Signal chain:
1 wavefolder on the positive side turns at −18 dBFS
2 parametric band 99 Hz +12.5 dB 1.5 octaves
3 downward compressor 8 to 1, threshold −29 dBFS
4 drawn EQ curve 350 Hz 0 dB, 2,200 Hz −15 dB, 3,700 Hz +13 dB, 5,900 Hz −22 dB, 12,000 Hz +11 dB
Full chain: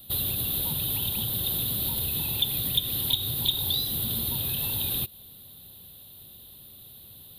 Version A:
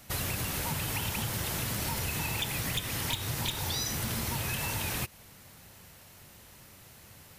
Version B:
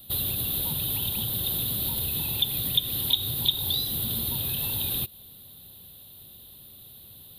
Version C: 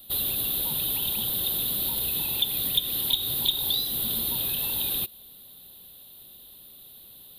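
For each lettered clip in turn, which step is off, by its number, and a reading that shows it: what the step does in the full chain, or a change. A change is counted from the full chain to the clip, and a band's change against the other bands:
4, 4 kHz band −9.0 dB
1, distortion level −13 dB
2, 125 Hz band −9.0 dB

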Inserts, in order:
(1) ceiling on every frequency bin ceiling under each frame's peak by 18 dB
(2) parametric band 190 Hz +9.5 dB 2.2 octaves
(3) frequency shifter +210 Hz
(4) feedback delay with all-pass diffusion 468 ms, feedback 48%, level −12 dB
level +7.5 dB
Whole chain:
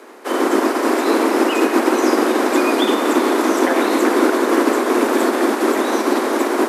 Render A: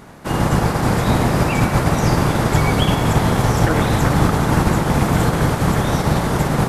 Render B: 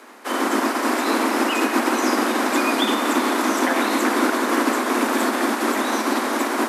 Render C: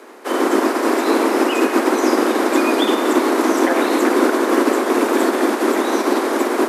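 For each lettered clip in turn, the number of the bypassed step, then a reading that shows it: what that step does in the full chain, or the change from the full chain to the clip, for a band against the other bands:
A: 3, 500 Hz band −4.5 dB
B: 2, 500 Hz band −7.0 dB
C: 4, echo-to-direct ratio −11.0 dB to none audible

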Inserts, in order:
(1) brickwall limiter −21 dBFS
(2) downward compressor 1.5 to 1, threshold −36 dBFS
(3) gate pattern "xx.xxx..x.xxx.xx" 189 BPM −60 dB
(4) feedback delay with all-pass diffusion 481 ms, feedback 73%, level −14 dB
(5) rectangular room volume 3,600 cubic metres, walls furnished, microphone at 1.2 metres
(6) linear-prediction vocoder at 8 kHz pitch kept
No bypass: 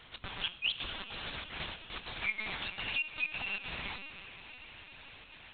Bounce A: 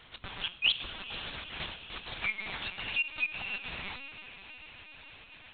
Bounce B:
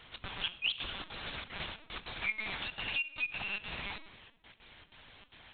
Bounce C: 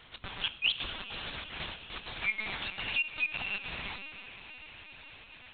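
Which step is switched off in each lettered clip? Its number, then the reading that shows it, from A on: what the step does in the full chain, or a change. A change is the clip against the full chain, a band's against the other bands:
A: 1, change in crest factor +4.0 dB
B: 4, change in momentary loudness spread +6 LU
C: 2, change in integrated loudness +2.5 LU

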